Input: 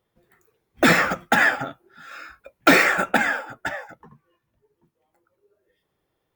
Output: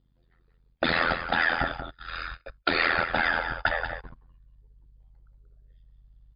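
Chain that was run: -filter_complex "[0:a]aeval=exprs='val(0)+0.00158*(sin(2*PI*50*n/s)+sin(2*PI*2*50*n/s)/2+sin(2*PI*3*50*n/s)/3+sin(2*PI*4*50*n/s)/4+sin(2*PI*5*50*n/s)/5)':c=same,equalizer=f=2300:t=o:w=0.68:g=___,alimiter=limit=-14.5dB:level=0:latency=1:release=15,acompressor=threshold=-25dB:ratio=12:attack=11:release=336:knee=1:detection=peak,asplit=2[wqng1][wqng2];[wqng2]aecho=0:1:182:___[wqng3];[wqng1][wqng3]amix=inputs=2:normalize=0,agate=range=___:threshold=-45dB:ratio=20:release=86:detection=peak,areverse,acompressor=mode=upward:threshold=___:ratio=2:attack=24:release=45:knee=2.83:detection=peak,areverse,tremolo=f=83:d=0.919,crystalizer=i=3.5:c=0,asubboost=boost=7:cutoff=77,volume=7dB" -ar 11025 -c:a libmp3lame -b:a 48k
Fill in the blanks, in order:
-5, 0.355, -39dB, -43dB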